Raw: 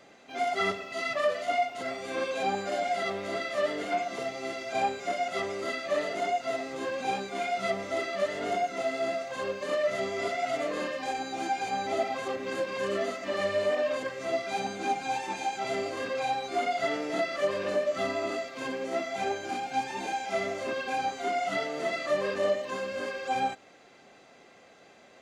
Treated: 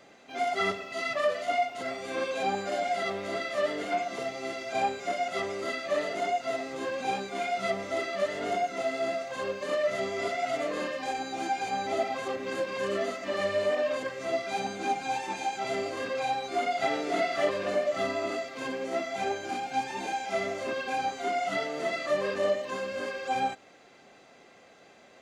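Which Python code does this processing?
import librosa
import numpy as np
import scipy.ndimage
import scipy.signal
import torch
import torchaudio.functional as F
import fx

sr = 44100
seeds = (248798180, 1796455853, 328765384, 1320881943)

y = fx.echo_throw(x, sr, start_s=16.26, length_s=0.68, ms=550, feedback_pct=35, wet_db=-4.0)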